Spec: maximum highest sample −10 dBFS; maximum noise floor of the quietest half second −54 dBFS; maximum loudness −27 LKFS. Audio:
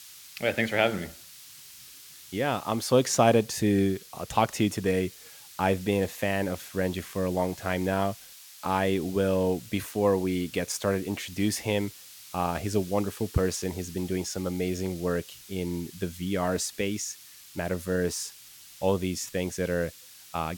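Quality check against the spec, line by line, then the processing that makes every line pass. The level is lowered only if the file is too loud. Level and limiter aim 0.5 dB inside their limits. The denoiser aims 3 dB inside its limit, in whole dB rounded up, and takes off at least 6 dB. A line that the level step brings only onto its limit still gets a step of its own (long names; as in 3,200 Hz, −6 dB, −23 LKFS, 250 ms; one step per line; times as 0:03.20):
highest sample −6.5 dBFS: out of spec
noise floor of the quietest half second −50 dBFS: out of spec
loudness −28.5 LKFS: in spec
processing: broadband denoise 7 dB, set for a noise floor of −50 dBFS
brickwall limiter −10.5 dBFS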